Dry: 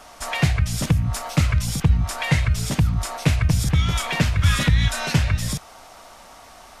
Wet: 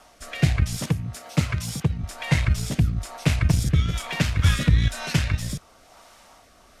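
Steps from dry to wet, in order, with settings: 0.76–2.03 HPF 100 Hz 12 dB/oct; added harmonics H 7 -26 dB, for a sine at -5.5 dBFS; rotary speaker horn 1.1 Hz

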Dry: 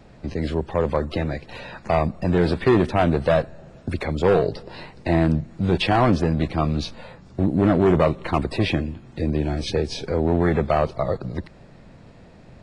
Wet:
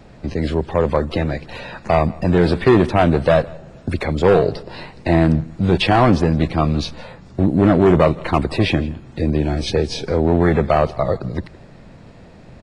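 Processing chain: echo 0.165 s -22.5 dB; gain +4.5 dB

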